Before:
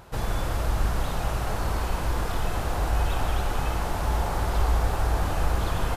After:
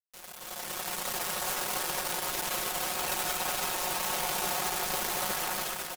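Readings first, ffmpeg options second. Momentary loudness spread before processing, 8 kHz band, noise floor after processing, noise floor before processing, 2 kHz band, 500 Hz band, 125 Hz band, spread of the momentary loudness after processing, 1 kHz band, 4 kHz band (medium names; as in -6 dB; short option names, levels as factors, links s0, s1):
4 LU, +8.5 dB, -47 dBFS, -30 dBFS, 0.0 dB, -5.5 dB, -22.5 dB, 5 LU, -3.5 dB, +4.5 dB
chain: -af "aeval=exprs='0.266*(cos(1*acos(clip(val(0)/0.266,-1,1)))-cos(1*PI/2))+0.0168*(cos(4*acos(clip(val(0)/0.266,-1,1)))-cos(4*PI/2))+0.00376*(cos(7*acos(clip(val(0)/0.266,-1,1)))-cos(7*PI/2))+0.00299*(cos(8*acos(clip(val(0)/0.266,-1,1)))-cos(8*PI/2))':c=same,highshelf=f=6500:g=7,asoftclip=type=tanh:threshold=0.188,highpass=420,acrusher=bits=4:mix=0:aa=0.000001,aresample=32000,aresample=44100,aecho=1:1:286:0.316,aeval=exprs='0.0398*(abs(mod(val(0)/0.0398+3,4)-2)-1)':c=same,aecho=1:1:5.5:0.65,dynaudnorm=f=150:g=9:m=3.55,volume=0.562"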